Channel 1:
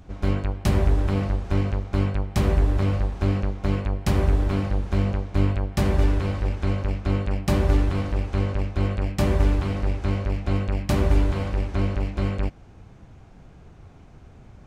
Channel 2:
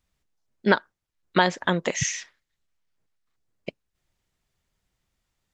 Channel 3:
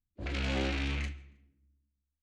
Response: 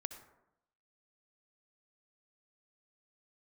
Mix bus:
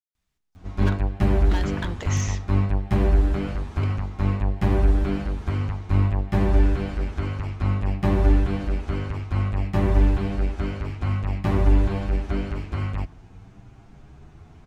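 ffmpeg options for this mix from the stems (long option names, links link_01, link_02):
-filter_complex "[0:a]acrossover=split=2700[link_01][link_02];[link_02]acompressor=threshold=-49dB:ratio=4:attack=1:release=60[link_03];[link_01][link_03]amix=inputs=2:normalize=0,asplit=2[link_04][link_05];[link_05]adelay=8.8,afreqshift=0.56[link_06];[link_04][link_06]amix=inputs=2:normalize=1,adelay=550,volume=1.5dB,asplit=2[link_07][link_08];[link_08]volume=-11dB[link_09];[1:a]asoftclip=type=hard:threshold=-18.5dB,acompressor=threshold=-29dB:ratio=3,adelay=150,volume=-5dB,asplit=2[link_10][link_11];[link_11]volume=-5.5dB[link_12];[3:a]atrim=start_sample=2205[link_13];[link_09][link_12]amix=inputs=2:normalize=0[link_14];[link_14][link_13]afir=irnorm=-1:irlink=0[link_15];[link_07][link_10][link_15]amix=inputs=3:normalize=0,equalizer=frequency=530:width=5.3:gain=-7.5"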